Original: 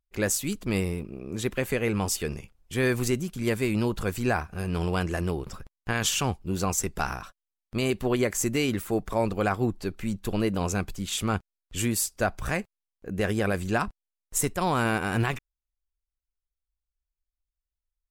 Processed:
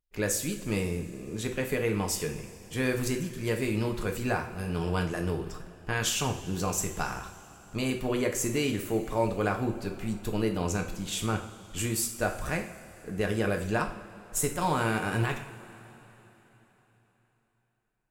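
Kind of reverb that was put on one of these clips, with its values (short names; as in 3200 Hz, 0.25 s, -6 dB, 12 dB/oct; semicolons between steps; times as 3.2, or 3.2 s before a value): two-slope reverb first 0.48 s, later 4 s, from -18 dB, DRR 3 dB; gain -4 dB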